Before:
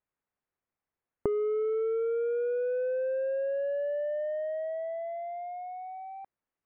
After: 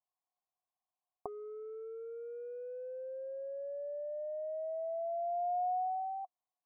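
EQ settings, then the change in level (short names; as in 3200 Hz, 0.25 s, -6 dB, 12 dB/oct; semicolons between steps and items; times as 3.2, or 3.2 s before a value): vocal tract filter a; +6.5 dB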